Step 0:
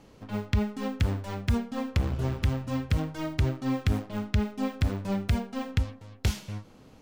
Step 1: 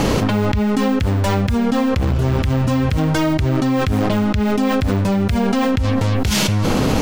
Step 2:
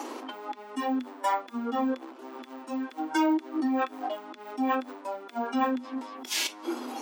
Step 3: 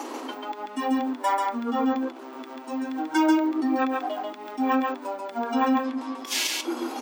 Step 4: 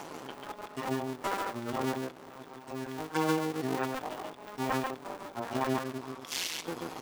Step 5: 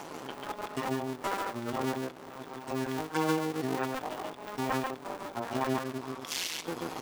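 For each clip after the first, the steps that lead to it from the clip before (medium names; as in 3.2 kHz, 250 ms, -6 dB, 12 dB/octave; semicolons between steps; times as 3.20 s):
level flattener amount 100%; trim +3.5 dB
spectral noise reduction 14 dB; rippled Chebyshev high-pass 240 Hz, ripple 9 dB
delay 139 ms -3 dB; trim +2.5 dB
cycle switcher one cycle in 2, muted; trim -5.5 dB
recorder AGC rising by 7.8 dB/s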